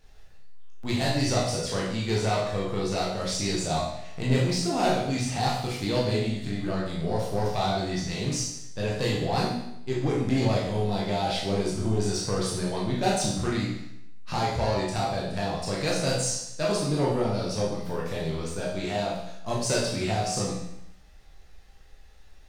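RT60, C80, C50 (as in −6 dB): 0.80 s, 5.5 dB, 2.0 dB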